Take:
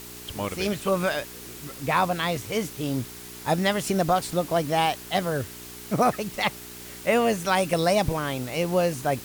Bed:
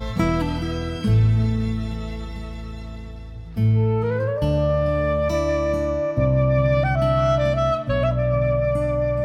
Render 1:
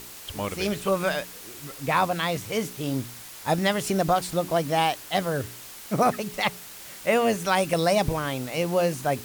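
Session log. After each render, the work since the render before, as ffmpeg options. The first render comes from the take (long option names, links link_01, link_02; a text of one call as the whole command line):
ffmpeg -i in.wav -af "bandreject=frequency=60:width_type=h:width=4,bandreject=frequency=120:width_type=h:width=4,bandreject=frequency=180:width_type=h:width=4,bandreject=frequency=240:width_type=h:width=4,bandreject=frequency=300:width_type=h:width=4,bandreject=frequency=360:width_type=h:width=4,bandreject=frequency=420:width_type=h:width=4" out.wav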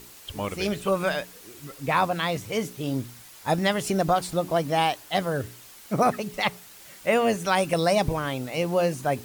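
ffmpeg -i in.wav -af "afftdn=noise_reduction=6:noise_floor=-43" out.wav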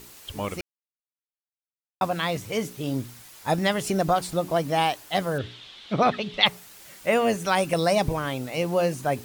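ffmpeg -i in.wav -filter_complex "[0:a]asettb=1/sr,asplit=3[link_01][link_02][link_03];[link_01]atrim=end=5.384[link_04];[link_02]atrim=start=5.38:end=6.46,asetpts=PTS-STARTPTS,afade=type=in:duration=0.004:curve=qsin,afade=type=out:start_time=1.076:duration=0.004:curve=qsin,lowpass=frequency=3500:width_type=q:width=5.4[link_05];[link_03]atrim=start=6.456[link_06];[link_04][link_05]acrossfade=duration=0.004:curve1=hsin:curve2=qsin[link_07];[link_07][link_06]acrossfade=duration=0.004:curve1=qsin:curve2=hsin,asplit=3[link_08][link_09][link_10];[link_08]atrim=end=0.61,asetpts=PTS-STARTPTS,afade=type=out:start_time=0.606:duration=0.004:curve=hsin[link_11];[link_09]atrim=start=0.61:end=2.01,asetpts=PTS-STARTPTS,volume=0[link_12];[link_10]atrim=start=2.01,asetpts=PTS-STARTPTS,afade=type=in:duration=0.004:curve=hsin[link_13];[link_11][link_12][link_13]concat=n=3:v=0:a=1" out.wav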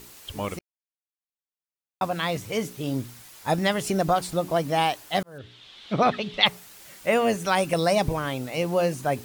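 ffmpeg -i in.wav -filter_complex "[0:a]asplit=3[link_01][link_02][link_03];[link_01]atrim=end=0.59,asetpts=PTS-STARTPTS,afade=type=out:start_time=0.586:duration=0.004:curve=hsin[link_04];[link_02]atrim=start=0.59:end=5.23,asetpts=PTS-STARTPTS,afade=type=in:duration=1.72,afade=type=out:start_time=4.636:duration=0.004:curve=hsin[link_05];[link_03]atrim=start=5.23,asetpts=PTS-STARTPTS,afade=type=in:duration=0.65[link_06];[link_04][link_05][link_06]concat=n=3:v=0:a=1" out.wav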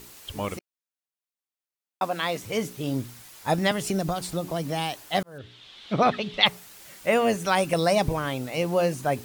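ffmpeg -i in.wav -filter_complex "[0:a]asettb=1/sr,asplit=3[link_01][link_02][link_03];[link_01]atrim=end=0.574[link_04];[link_02]atrim=start=0.57:end=2.44,asetpts=PTS-STARTPTS,afade=type=in:duration=0.004:curve=qsin,afade=type=out:start_time=1.866:duration=0.004:curve=qsin,highpass=230[link_05];[link_03]atrim=start=2.436[link_06];[link_04][link_05]acrossfade=duration=0.004:curve1=hsin:curve2=qsin[link_07];[link_07][link_06]acrossfade=duration=0.004:curve1=qsin:curve2=hsin,asettb=1/sr,asplit=3[link_08][link_09][link_10];[link_08]atrim=end=3.714[link_11];[link_09]atrim=start=3.71:end=4.97,asetpts=PTS-STARTPTS,afade=type=in:duration=0.004:curve=qsin,afade=type=out:start_time=1.256:duration=0.004:curve=qsin,acrossover=split=290|3000[link_12][link_13][link_14];[link_13]acompressor=threshold=-29dB:ratio=3:attack=3.2:release=140:knee=2.83:detection=peak[link_15];[link_12][link_15][link_14]amix=inputs=3:normalize=0[link_16];[link_10]atrim=start=4.966[link_17];[link_11][link_16]acrossfade=duration=0.004:curve1=hsin:curve2=qsin[link_18];[link_18][link_17]acrossfade=duration=0.004:curve1=qsin:curve2=hsin" out.wav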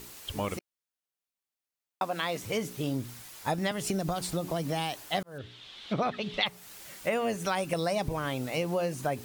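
ffmpeg -i in.wav -af "acompressor=threshold=-27dB:ratio=4" out.wav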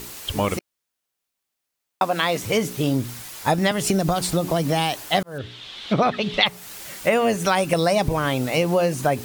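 ffmpeg -i in.wav -af "volume=10dB" out.wav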